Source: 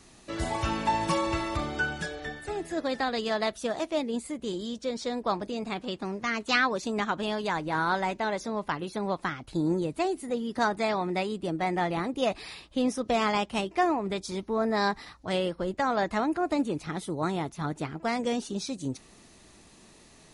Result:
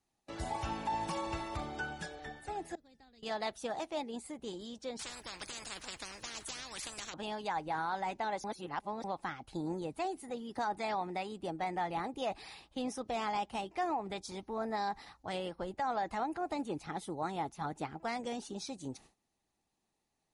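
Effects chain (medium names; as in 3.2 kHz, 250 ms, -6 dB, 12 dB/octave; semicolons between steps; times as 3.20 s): gate with hold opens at -42 dBFS; 2.75–3.23 s: amplifier tone stack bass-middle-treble 10-0-1; harmonic-percussive split harmonic -5 dB; peaking EQ 810 Hz +11 dB 0.27 oct; 8.44–9.04 s: reverse; peak limiter -20 dBFS, peak gain reduction 8 dB; 4.99–7.14 s: spectrum-flattening compressor 10:1; trim -6.5 dB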